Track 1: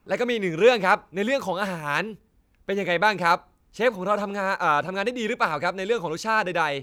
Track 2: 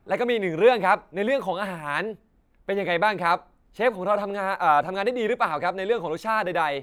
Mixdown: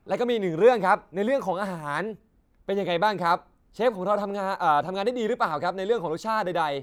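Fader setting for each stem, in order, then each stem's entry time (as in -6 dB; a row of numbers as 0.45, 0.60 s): -9.0, -3.0 dB; 0.00, 0.00 s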